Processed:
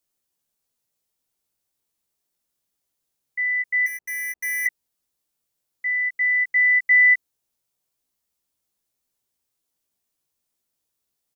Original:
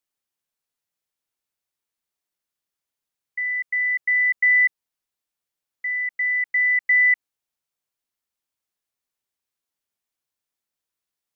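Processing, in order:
0:03.86–0:04.66: running median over 25 samples
parametric band 1,800 Hz −7.5 dB 2.5 octaves
double-tracking delay 16 ms −4.5 dB
level +7 dB

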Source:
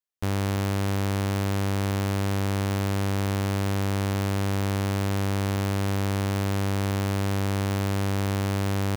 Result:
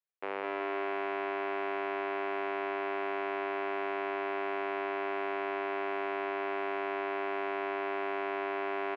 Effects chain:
Chebyshev band-pass filter 390–2,500 Hz, order 3
on a send: bouncing-ball delay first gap 210 ms, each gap 0.8×, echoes 5
on the sum: level −2.5 dB

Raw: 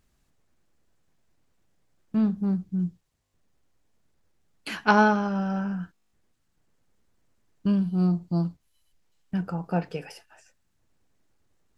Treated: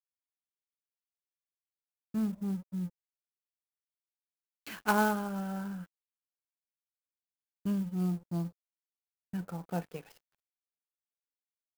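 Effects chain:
dead-zone distortion −46.5 dBFS
converter with an unsteady clock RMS 0.033 ms
level −8 dB

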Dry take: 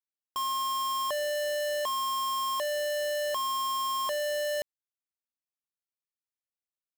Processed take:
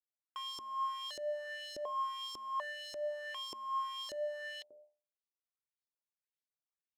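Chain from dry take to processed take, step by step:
reverb reduction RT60 0.7 s
hum removal 74.44 Hz, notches 12
downward compressor, threshold −32 dBFS, peak gain reduction 3 dB
auto-filter band-pass saw up 1.7 Hz 350–5,400 Hz
level +1.5 dB

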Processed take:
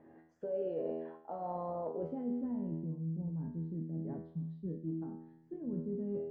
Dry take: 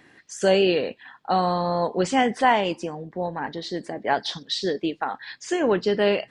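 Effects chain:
low-pass filter sweep 660 Hz → 190 Hz, 0:01.90–0:02.58
brickwall limiter −15.5 dBFS, peak gain reduction 11.5 dB
tuned comb filter 81 Hz, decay 0.84 s, harmonics all, mix 90%
reversed playback
downward compressor 4 to 1, threshold −44 dBFS, peak gain reduction 13.5 dB
reversed playback
notch filter 750 Hz, Q 12
level +8 dB

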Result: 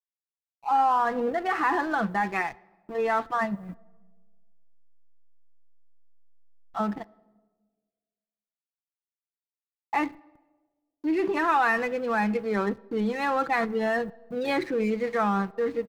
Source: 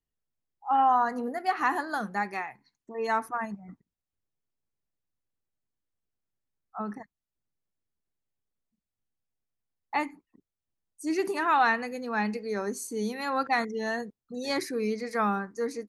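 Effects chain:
Butterworth low-pass 3,600 Hz 36 dB per octave
comb filter 6 ms, depth 44%
in parallel at 0 dB: compressor whose output falls as the input rises −31 dBFS
on the sum: slack as between gear wheels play −34.5 dBFS
bit reduction 11 bits
on a send at −22 dB: convolution reverb RT60 1.5 s, pre-delay 3 ms
on the sum: level −1.5 dB

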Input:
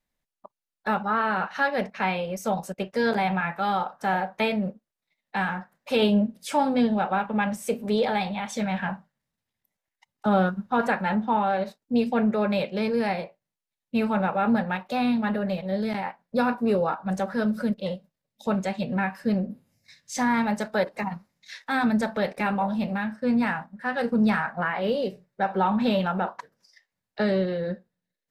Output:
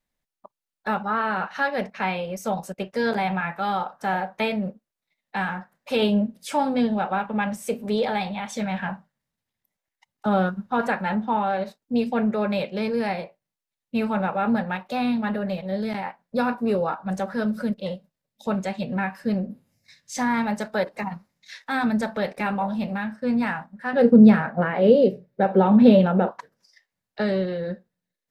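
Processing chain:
0:23.93–0:26.31: octave-band graphic EQ 125/250/500/1,000/8,000 Hz +7/+8/+10/−4/−7 dB

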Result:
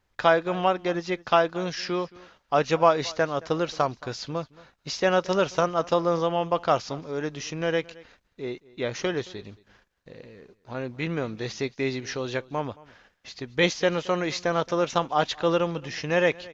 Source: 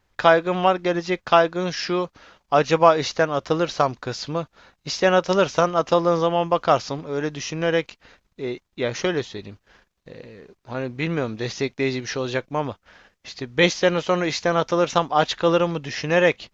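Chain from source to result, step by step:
single-tap delay 222 ms −22 dB
level −4.5 dB

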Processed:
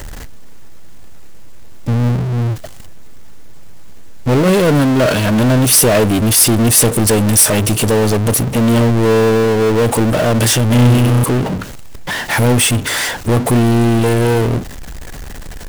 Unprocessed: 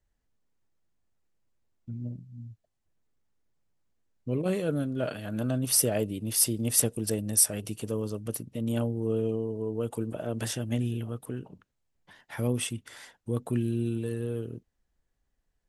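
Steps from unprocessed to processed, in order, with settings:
0:10.70–0:11.24: flutter between parallel walls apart 5.6 metres, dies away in 1.1 s
power curve on the samples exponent 0.35
level +4.5 dB

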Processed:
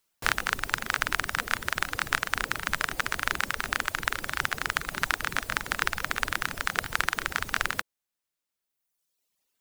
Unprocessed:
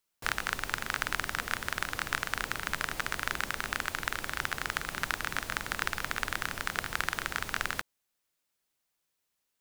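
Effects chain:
reverb reduction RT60 1.6 s
level +6 dB

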